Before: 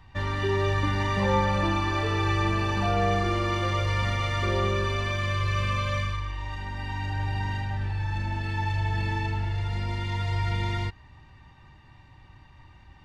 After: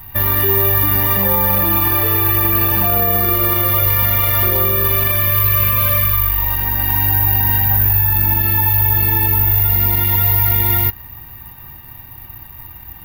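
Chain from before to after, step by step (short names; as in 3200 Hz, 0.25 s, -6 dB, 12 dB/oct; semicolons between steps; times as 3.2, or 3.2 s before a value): careless resampling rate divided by 3×, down none, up zero stuff; maximiser +12 dB; gain -1 dB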